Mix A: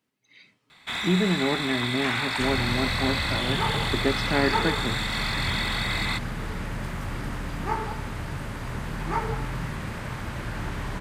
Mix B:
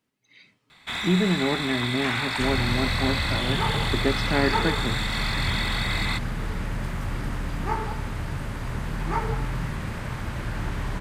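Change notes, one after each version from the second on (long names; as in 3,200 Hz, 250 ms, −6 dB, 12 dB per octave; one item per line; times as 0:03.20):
master: add low-shelf EQ 110 Hz +5 dB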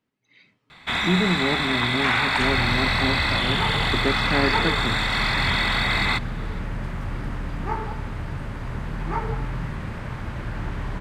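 first sound +8.0 dB
master: add high-shelf EQ 5,200 Hz −12 dB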